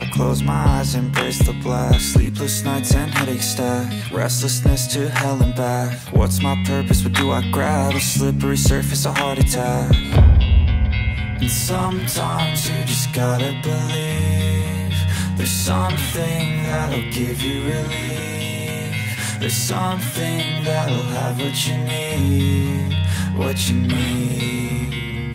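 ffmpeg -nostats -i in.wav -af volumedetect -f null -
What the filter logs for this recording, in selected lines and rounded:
mean_volume: -18.5 dB
max_volume: -3.4 dB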